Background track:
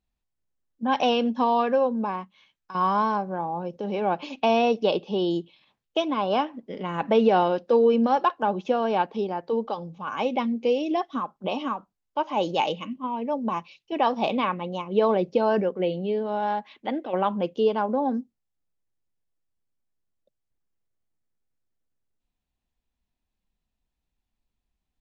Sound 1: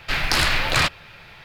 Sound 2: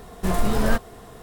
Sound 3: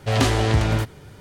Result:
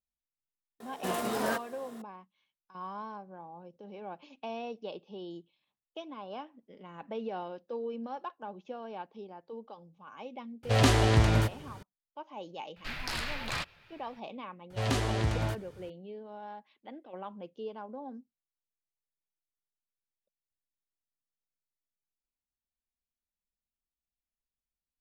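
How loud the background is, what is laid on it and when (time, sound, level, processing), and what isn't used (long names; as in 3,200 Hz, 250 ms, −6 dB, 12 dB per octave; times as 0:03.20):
background track −18 dB
0:00.80: mix in 2 −5.5 dB + high-pass filter 290 Hz
0:10.63: mix in 3 −4 dB
0:12.76: mix in 1 −16 dB
0:14.70: mix in 3 −10.5 dB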